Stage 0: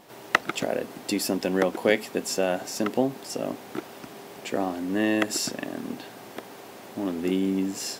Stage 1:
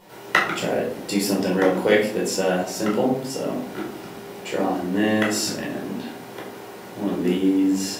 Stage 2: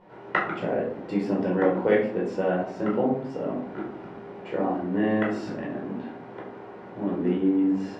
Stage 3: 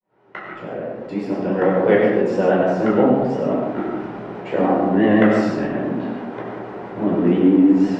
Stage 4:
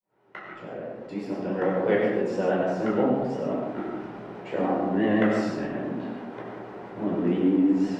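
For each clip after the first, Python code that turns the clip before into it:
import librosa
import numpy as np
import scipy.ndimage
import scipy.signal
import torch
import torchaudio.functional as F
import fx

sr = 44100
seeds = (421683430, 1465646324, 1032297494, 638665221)

y1 = fx.room_shoebox(x, sr, seeds[0], volume_m3=670.0, walls='furnished', distance_m=4.7)
y1 = y1 * 10.0 ** (-2.5 / 20.0)
y2 = scipy.signal.sosfilt(scipy.signal.butter(2, 1600.0, 'lowpass', fs=sr, output='sos'), y1)
y2 = y2 * 10.0 ** (-3.0 / 20.0)
y3 = fx.fade_in_head(y2, sr, length_s=2.57)
y3 = fx.vibrato(y3, sr, rate_hz=6.0, depth_cents=71.0)
y3 = fx.rev_freeverb(y3, sr, rt60_s=0.81, hf_ratio=0.45, predelay_ms=55, drr_db=2.0)
y3 = y3 * 10.0 ** (7.5 / 20.0)
y4 = fx.high_shelf(y3, sr, hz=4700.0, db=7.0)
y4 = y4 * 10.0 ** (-8.0 / 20.0)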